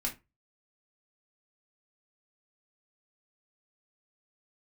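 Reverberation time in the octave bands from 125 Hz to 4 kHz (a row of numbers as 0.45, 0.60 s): 0.35, 0.25, 0.25, 0.25, 0.20, 0.15 s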